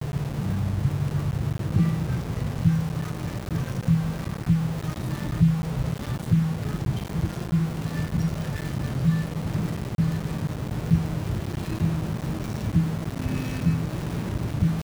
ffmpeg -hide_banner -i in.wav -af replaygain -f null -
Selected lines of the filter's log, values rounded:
track_gain = +7.7 dB
track_peak = 0.283